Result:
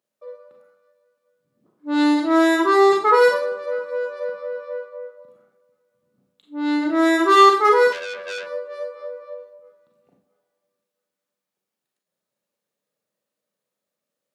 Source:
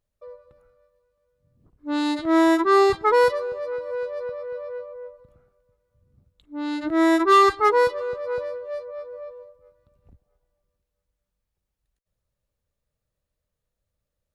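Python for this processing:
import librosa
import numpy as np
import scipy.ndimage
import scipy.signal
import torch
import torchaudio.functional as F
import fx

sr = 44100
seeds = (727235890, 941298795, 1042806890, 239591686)

y = scipy.signal.sosfilt(scipy.signal.butter(4, 200.0, 'highpass', fs=sr, output='sos'), x)
y = fx.rev_schroeder(y, sr, rt60_s=0.42, comb_ms=30, drr_db=1.5)
y = fx.transformer_sat(y, sr, knee_hz=3300.0, at=(7.92, 8.47))
y = y * 10.0 ** (1.0 / 20.0)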